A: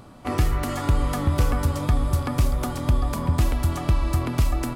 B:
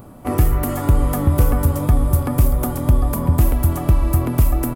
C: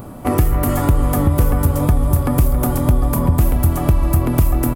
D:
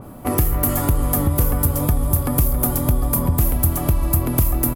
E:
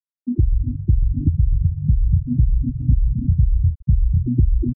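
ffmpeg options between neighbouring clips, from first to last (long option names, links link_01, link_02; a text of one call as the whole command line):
ffmpeg -i in.wav -af "firequalizer=gain_entry='entry(490,0);entry(1200,-5);entry(4200,-12);entry(13000,9)':delay=0.05:min_phase=1,volume=6dB" out.wav
ffmpeg -i in.wav -filter_complex "[0:a]acompressor=threshold=-23dB:ratio=2,asplit=2[link_01][link_02];[link_02]adelay=274.1,volume=-12dB,highshelf=frequency=4000:gain=-6.17[link_03];[link_01][link_03]amix=inputs=2:normalize=0,volume=7dB" out.wav
ffmpeg -i in.wav -af "aexciter=amount=2.4:drive=1.8:freq=11000,adynamicequalizer=threshold=0.00891:dfrequency=3400:dqfactor=0.7:tfrequency=3400:tqfactor=0.7:attack=5:release=100:ratio=0.375:range=3:mode=boostabove:tftype=highshelf,volume=-4dB" out.wav
ffmpeg -i in.wav -filter_complex "[0:a]asplit=2[link_01][link_02];[link_02]adelay=33,volume=-6dB[link_03];[link_01][link_03]amix=inputs=2:normalize=0,afftfilt=real='re*gte(hypot(re,im),0.708)':imag='im*gte(hypot(re,im),0.708)':win_size=1024:overlap=0.75,volume=2dB" out.wav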